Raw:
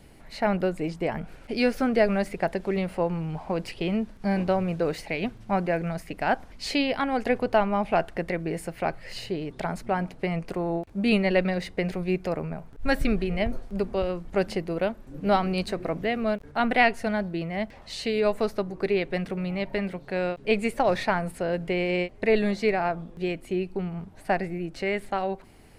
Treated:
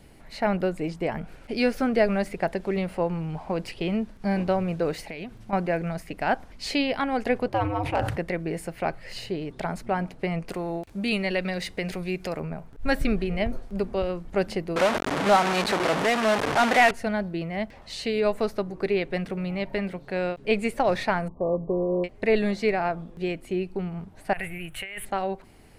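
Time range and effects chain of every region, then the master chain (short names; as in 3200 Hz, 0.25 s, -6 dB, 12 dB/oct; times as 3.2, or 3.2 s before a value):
4.99–5.53 high shelf 9200 Hz +5 dB + compressor, threshold -32 dBFS
7.48–8.17 ring modulator 110 Hz + hard clip -15.5 dBFS + sustainer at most 49 dB/s
10.49–12.4 high shelf 2000 Hz +9 dB + compressor 1.5:1, threshold -31 dBFS
14.76–16.91 delta modulation 64 kbps, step -21 dBFS + HPF 98 Hz 6 dB/oct + overdrive pedal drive 14 dB, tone 1900 Hz, clips at -6.5 dBFS
21.28–22.04 sample sorter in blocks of 16 samples + brick-wall FIR low-pass 1200 Hz + dynamic EQ 510 Hz, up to +4 dB, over -39 dBFS, Q 1.5
24.33–25.05 EQ curve 130 Hz 0 dB, 240 Hz -17 dB, 3100 Hz +9 dB, 4900 Hz -16 dB, 10000 Hz +14 dB + negative-ratio compressor -34 dBFS
whole clip: dry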